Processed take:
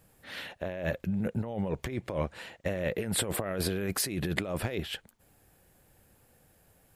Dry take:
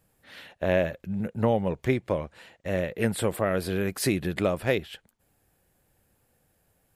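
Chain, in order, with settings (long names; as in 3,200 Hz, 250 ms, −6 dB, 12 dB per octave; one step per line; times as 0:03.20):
compressor whose output falls as the input rises −32 dBFS, ratio −1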